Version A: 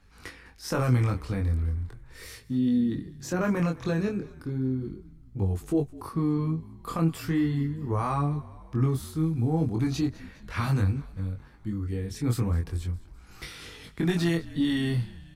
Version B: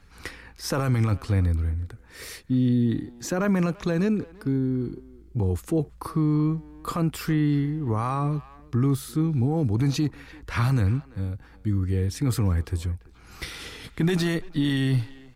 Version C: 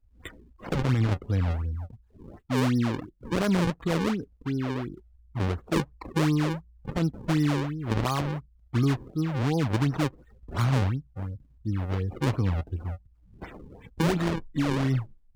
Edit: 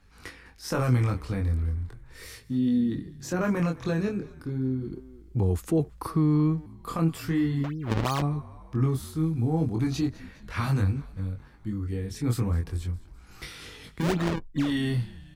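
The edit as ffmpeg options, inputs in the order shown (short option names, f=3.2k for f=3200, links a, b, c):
-filter_complex "[2:a]asplit=2[a][b];[0:a]asplit=4[c][d][e][f];[c]atrim=end=4.922[g];[1:a]atrim=start=4.918:end=6.662[h];[d]atrim=start=6.658:end=7.642[i];[a]atrim=start=7.638:end=8.222[j];[e]atrim=start=8.218:end=14.11[k];[b]atrim=start=13.95:end=14.74[l];[f]atrim=start=14.58[m];[g][h]acrossfade=d=0.004:c1=hsin:c2=hsin[n];[n][i]acrossfade=d=0.004:c1=hsin:c2=hsin[o];[o][j]acrossfade=d=0.004:c1=hsin:c2=hsin[p];[p][k]acrossfade=d=0.004:c1=hsin:c2=hsin[q];[q][l]acrossfade=d=0.16:c1=tri:c2=tri[r];[r][m]acrossfade=d=0.16:c1=tri:c2=tri"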